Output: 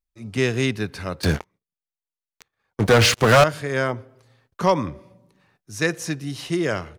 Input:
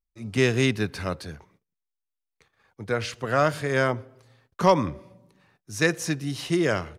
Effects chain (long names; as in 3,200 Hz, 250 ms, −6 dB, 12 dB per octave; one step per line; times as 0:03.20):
0:01.23–0:03.44: leveller curve on the samples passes 5